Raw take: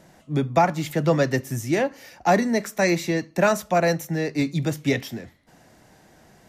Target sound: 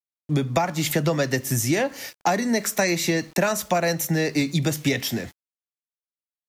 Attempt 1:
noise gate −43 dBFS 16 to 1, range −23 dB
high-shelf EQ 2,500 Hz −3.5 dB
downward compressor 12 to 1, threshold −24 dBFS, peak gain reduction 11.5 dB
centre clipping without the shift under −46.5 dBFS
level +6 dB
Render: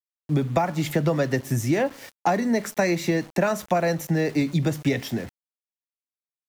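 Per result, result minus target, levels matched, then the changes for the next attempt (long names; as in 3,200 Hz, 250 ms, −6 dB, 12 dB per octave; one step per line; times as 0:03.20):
4,000 Hz band −6.5 dB; centre clipping without the shift: distortion +9 dB
change: high-shelf EQ 2,500 Hz +8 dB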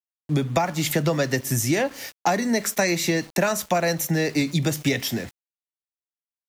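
centre clipping without the shift: distortion +8 dB
change: centre clipping without the shift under −53 dBFS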